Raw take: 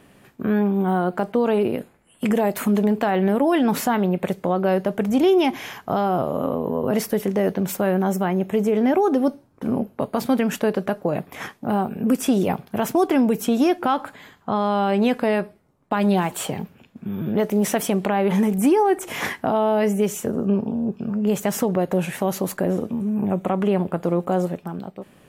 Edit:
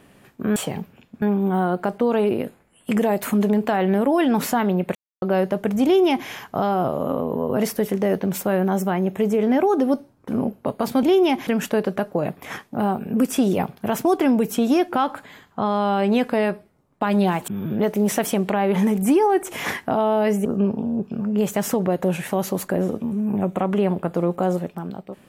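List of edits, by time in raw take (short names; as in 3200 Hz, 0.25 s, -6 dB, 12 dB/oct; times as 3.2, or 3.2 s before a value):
4.29–4.56 mute
5.18–5.62 copy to 10.37
16.38–17.04 move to 0.56
20.01–20.34 cut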